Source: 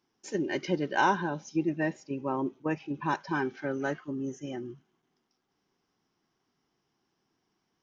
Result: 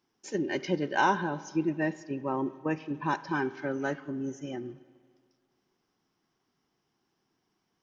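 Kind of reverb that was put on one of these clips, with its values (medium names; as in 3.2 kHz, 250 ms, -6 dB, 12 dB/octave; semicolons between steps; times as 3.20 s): spring tank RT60 1.9 s, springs 38/48 ms, chirp 65 ms, DRR 16.5 dB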